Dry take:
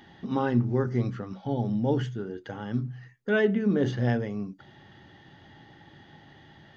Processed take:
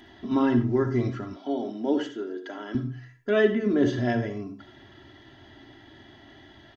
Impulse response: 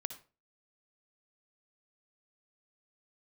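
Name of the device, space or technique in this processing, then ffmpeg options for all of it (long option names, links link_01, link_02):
microphone above a desk: -filter_complex "[0:a]aecho=1:1:3:0.84[link_01];[1:a]atrim=start_sample=2205[link_02];[link_01][link_02]afir=irnorm=-1:irlink=0,asettb=1/sr,asplit=3[link_03][link_04][link_05];[link_03]atrim=end=1.364[link_06];[link_04]atrim=start=1.36:end=2.75,asetpts=PTS-STARTPTS,afade=type=in:duration=0.004:curve=qsin,afade=type=out:start_time=1.386:duration=0.004:curve=qsin,highpass=frequency=260:width=0.5412,highpass=frequency=260:width=1.3066[link_07];[link_05]atrim=start=2.746[link_08];[link_06][link_07]acrossfade=duration=0.004:curve1=hsin:curve2=qsin[link_09];[link_09][link_08]acrossfade=duration=0.004:curve1=qsin:curve2=hsin,volume=2dB"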